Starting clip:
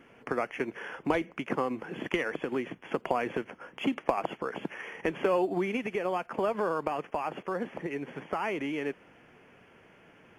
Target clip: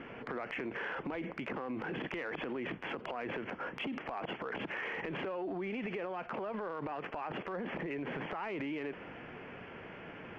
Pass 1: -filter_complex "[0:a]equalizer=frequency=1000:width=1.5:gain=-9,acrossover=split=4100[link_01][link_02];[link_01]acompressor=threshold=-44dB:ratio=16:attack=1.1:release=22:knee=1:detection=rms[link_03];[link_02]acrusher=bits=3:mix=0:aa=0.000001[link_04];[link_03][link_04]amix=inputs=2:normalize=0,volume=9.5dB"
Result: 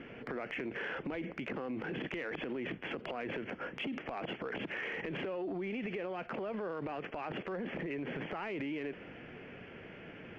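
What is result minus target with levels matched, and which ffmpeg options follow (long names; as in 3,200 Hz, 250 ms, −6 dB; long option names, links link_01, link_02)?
1,000 Hz band −3.0 dB
-filter_complex "[0:a]acrossover=split=4100[link_01][link_02];[link_01]acompressor=threshold=-44dB:ratio=16:attack=1.1:release=22:knee=1:detection=rms[link_03];[link_02]acrusher=bits=3:mix=0:aa=0.000001[link_04];[link_03][link_04]amix=inputs=2:normalize=0,volume=9.5dB"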